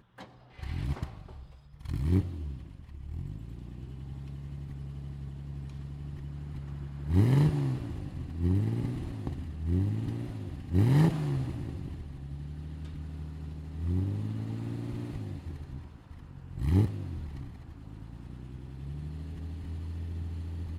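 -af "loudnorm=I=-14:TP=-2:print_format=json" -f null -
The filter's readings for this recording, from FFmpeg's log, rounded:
"input_i" : "-34.0",
"input_tp" : "-12.1",
"input_lra" : "10.7",
"input_thresh" : "-44.5",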